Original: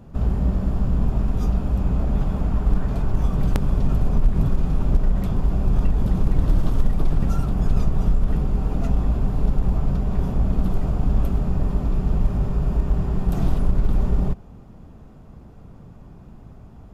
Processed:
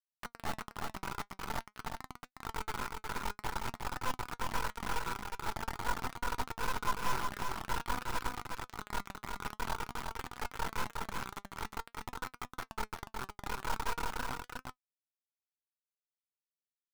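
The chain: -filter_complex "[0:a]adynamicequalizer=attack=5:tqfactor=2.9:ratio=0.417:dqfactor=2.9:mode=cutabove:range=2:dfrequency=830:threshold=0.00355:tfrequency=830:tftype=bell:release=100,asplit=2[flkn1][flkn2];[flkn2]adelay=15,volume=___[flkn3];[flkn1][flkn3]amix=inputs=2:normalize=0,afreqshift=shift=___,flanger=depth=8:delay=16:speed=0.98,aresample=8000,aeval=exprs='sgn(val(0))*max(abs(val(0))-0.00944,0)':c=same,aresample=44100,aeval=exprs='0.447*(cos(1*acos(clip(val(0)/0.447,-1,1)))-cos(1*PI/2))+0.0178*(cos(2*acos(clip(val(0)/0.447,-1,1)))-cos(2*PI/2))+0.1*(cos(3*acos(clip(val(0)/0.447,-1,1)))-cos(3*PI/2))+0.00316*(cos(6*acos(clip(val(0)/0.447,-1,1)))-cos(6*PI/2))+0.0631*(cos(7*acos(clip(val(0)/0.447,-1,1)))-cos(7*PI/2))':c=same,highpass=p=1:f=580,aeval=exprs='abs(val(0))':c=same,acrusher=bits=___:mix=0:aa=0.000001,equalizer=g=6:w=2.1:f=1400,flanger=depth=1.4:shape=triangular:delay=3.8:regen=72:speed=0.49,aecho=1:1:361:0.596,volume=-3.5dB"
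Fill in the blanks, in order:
-9dB, -270, 4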